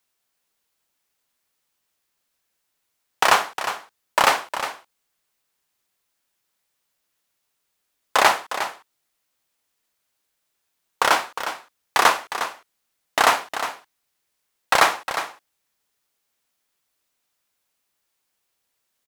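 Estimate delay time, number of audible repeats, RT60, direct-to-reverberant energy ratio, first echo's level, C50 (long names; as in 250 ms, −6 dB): 358 ms, 1, no reverb audible, no reverb audible, −10.5 dB, no reverb audible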